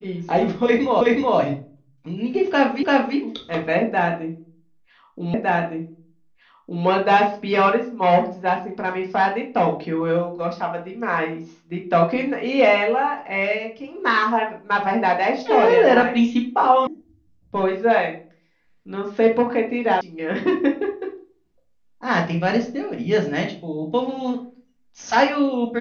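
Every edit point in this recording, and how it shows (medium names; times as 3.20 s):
1.01 s: repeat of the last 0.37 s
2.83 s: repeat of the last 0.34 s
5.34 s: repeat of the last 1.51 s
16.87 s: sound stops dead
20.01 s: sound stops dead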